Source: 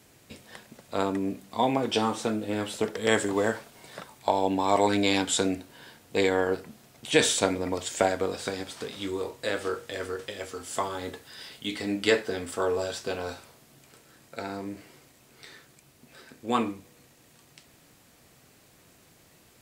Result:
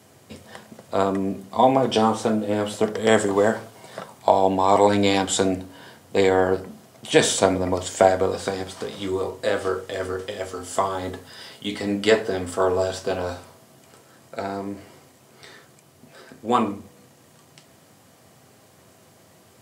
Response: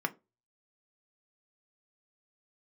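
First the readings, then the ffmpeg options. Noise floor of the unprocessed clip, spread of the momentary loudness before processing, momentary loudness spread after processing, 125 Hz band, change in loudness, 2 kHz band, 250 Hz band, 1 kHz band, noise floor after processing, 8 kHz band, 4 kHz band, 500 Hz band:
-59 dBFS, 18 LU, 18 LU, +7.0 dB, +6.0 dB, +2.5 dB, +5.0 dB, +7.5 dB, -54 dBFS, +3.0 dB, +2.5 dB, +7.0 dB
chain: -filter_complex "[0:a]asplit=2[a][b];[1:a]atrim=start_sample=2205,asetrate=23814,aresample=44100[c];[b][c]afir=irnorm=-1:irlink=0,volume=-4.5dB[d];[a][d]amix=inputs=2:normalize=0,volume=-2dB"

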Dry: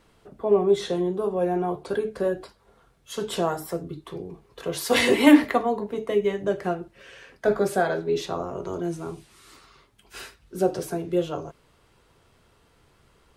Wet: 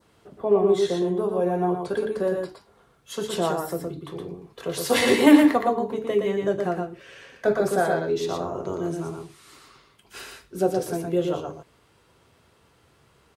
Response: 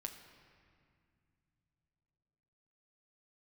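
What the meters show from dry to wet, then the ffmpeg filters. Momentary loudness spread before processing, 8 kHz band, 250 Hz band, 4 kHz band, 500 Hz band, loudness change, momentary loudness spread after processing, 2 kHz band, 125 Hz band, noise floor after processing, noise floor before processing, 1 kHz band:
18 LU, +1.5 dB, +1.5 dB, 0.0 dB, +1.0 dB, +1.0 dB, 17 LU, -0.5 dB, +1.5 dB, -61 dBFS, -62 dBFS, +1.5 dB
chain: -filter_complex "[0:a]highpass=70,adynamicequalizer=threshold=0.00501:dfrequency=2500:dqfactor=1.4:tfrequency=2500:tqfactor=1.4:attack=5:release=100:ratio=0.375:range=2.5:mode=cutabove:tftype=bell,asplit=2[a][b];[b]aecho=0:1:117:0.631[c];[a][c]amix=inputs=2:normalize=0"

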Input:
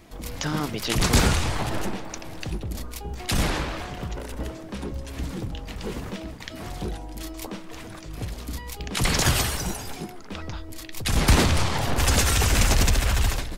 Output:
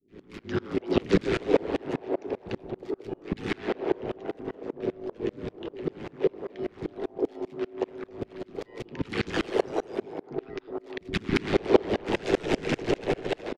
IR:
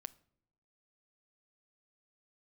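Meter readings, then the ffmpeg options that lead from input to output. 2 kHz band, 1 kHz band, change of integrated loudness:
-7.0 dB, -6.0 dB, -5.0 dB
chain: -filter_complex "[0:a]adynamicequalizer=threshold=0.00794:dfrequency=1100:dqfactor=1.5:tfrequency=1100:tqfactor=1.5:attack=5:release=100:ratio=0.375:range=3:mode=cutabove:tftype=bell,highpass=180,lowpass=2.5k,aeval=exprs='val(0)*sin(2*PI*54*n/s)':c=same,equalizer=f=390:t=o:w=0.9:g=14.5,acrossover=split=310|1100[a][b][c];[c]adelay=80[d];[b]adelay=370[e];[a][e][d]amix=inputs=3:normalize=0,asplit=2[f][g];[1:a]atrim=start_sample=2205,asetrate=28224,aresample=44100[h];[g][h]afir=irnorm=-1:irlink=0,volume=12.5dB[i];[f][i]amix=inputs=2:normalize=0,aeval=exprs='val(0)*pow(10,-30*if(lt(mod(-5.1*n/s,1),2*abs(-5.1)/1000),1-mod(-5.1*n/s,1)/(2*abs(-5.1)/1000),(mod(-5.1*n/s,1)-2*abs(-5.1)/1000)/(1-2*abs(-5.1)/1000))/20)':c=same,volume=-4.5dB"

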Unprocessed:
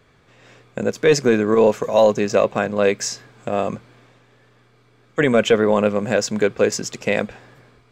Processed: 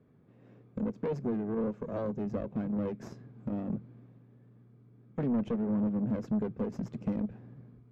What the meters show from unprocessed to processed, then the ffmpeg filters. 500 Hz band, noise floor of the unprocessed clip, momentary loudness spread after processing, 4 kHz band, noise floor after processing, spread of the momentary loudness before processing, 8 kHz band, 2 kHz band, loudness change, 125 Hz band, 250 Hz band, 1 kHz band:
-20.5 dB, -56 dBFS, 13 LU, under -30 dB, -60 dBFS, 11 LU, under -35 dB, -30.0 dB, -15.0 dB, -8.0 dB, -8.0 dB, -21.0 dB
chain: -af "asubboost=boost=2.5:cutoff=220,acompressor=threshold=-23dB:ratio=3,aeval=exprs='0.335*(cos(1*acos(clip(val(0)/0.335,-1,1)))-cos(1*PI/2))+0.0944*(cos(4*acos(clip(val(0)/0.335,-1,1)))-cos(4*PI/2))+0.0168*(cos(8*acos(clip(val(0)/0.335,-1,1)))-cos(8*PI/2))':c=same,bandpass=f=210:t=q:w=1.5:csg=0,asoftclip=type=tanh:threshold=-24dB"

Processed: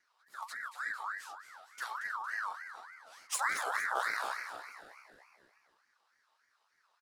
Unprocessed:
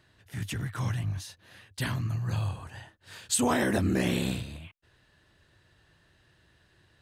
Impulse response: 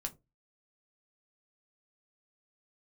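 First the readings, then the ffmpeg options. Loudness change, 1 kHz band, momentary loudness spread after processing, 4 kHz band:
-7.0 dB, +1.0 dB, 19 LU, -9.0 dB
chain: -filter_complex "[0:a]aeval=exprs='0.2*(cos(1*acos(clip(val(0)/0.2,-1,1)))-cos(1*PI/2))+0.0562*(cos(2*acos(clip(val(0)/0.2,-1,1)))-cos(2*PI/2))+0.0224*(cos(3*acos(clip(val(0)/0.2,-1,1)))-cos(3*PI/2))':c=same,asuperstop=centerf=1100:order=20:qfactor=0.76,flanger=delay=5.3:depth=6.9:regen=-39:speed=1.5:shape=triangular,asplit=7[a][b][c][d][e][f][g];[b]adelay=229,afreqshift=79,volume=-10dB[h];[c]adelay=458,afreqshift=158,volume=-15.5dB[i];[d]adelay=687,afreqshift=237,volume=-21dB[j];[e]adelay=916,afreqshift=316,volume=-26.5dB[k];[f]adelay=1145,afreqshift=395,volume=-32.1dB[l];[g]adelay=1374,afreqshift=474,volume=-37.6dB[m];[a][h][i][j][k][l][m]amix=inputs=7:normalize=0,aeval=exprs='val(0)*sin(2*PI*1400*n/s+1400*0.3/3.4*sin(2*PI*3.4*n/s))':c=same"

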